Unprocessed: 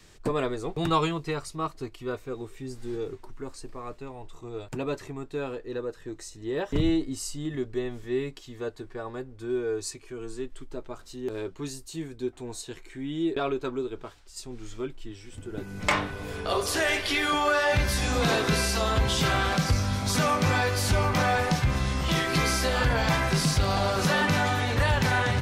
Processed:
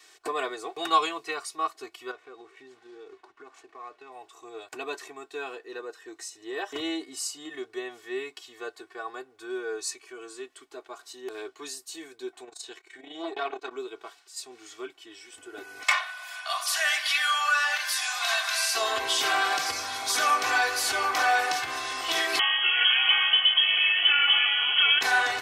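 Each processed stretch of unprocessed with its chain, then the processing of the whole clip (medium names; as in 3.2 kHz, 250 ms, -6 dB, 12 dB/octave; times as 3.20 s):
2.11–4.12 s: median filter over 9 samples + low-pass 6.2 kHz + compression 5:1, threshold -38 dBFS
12.43–13.71 s: peaking EQ 12 kHz -8 dB 0.72 oct + transformer saturation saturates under 450 Hz
15.83–18.75 s: steep high-pass 590 Hz 96 dB/octave + peaking EQ 770 Hz -7.5 dB 0.88 oct
22.39–25.01 s: treble shelf 2.2 kHz -7.5 dB + frequency inversion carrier 3.2 kHz
whole clip: high-pass 690 Hz 12 dB/octave; comb 2.7 ms, depth 97%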